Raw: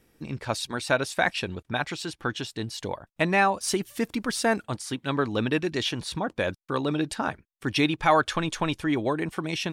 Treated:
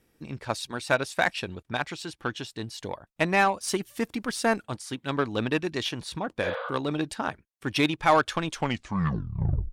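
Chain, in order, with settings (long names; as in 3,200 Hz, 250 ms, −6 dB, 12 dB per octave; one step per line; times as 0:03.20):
turntable brake at the end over 1.24 s
harmonic generator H 7 −26 dB, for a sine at −8.5 dBFS
healed spectral selection 0:06.46–0:06.67, 470–4,900 Hz both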